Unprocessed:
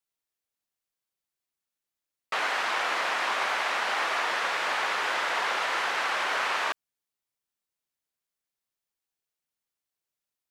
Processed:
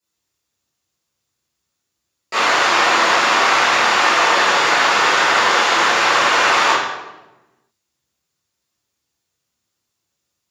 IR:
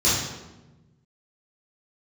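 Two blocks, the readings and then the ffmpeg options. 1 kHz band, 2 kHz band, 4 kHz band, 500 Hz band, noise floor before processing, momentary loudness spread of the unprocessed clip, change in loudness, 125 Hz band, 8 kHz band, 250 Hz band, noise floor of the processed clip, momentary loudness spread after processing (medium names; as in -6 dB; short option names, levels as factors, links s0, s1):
+14.0 dB, +13.0 dB, +14.5 dB, +14.5 dB, under -85 dBFS, 2 LU, +13.5 dB, no reading, +16.5 dB, +18.5 dB, -77 dBFS, 3 LU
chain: -filter_complex "[1:a]atrim=start_sample=2205[s0];[0:a][s0]afir=irnorm=-1:irlink=0,volume=0.708"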